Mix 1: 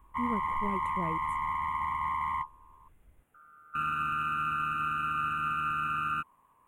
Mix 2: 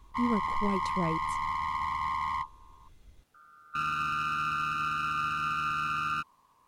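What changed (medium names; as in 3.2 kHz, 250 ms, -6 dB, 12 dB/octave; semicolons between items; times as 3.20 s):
speech +5.0 dB; master: remove Butterworth band-stop 4.9 kHz, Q 0.81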